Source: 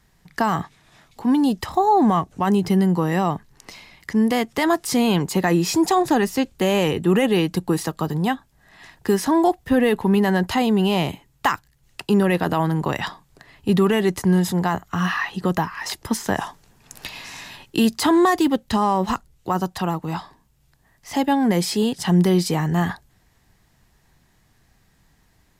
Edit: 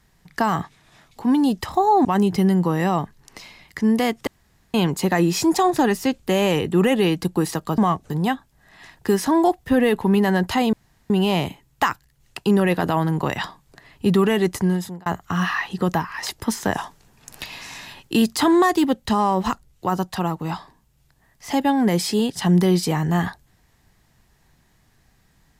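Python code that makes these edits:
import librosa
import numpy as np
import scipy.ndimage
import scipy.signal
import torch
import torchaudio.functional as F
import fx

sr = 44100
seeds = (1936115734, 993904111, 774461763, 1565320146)

y = fx.edit(x, sr, fx.move(start_s=2.05, length_s=0.32, to_s=8.1),
    fx.room_tone_fill(start_s=4.59, length_s=0.47),
    fx.insert_room_tone(at_s=10.73, length_s=0.37),
    fx.fade_out_span(start_s=14.18, length_s=0.51), tone=tone)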